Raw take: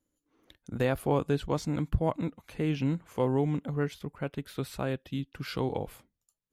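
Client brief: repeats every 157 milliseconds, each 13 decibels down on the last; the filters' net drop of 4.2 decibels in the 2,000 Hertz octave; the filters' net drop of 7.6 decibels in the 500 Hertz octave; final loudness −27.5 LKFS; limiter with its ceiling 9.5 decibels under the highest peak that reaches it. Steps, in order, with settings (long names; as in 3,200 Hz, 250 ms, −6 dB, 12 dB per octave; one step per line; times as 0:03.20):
parametric band 500 Hz −9 dB
parametric band 2,000 Hz −5 dB
brickwall limiter −23.5 dBFS
repeating echo 157 ms, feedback 22%, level −13 dB
level +9 dB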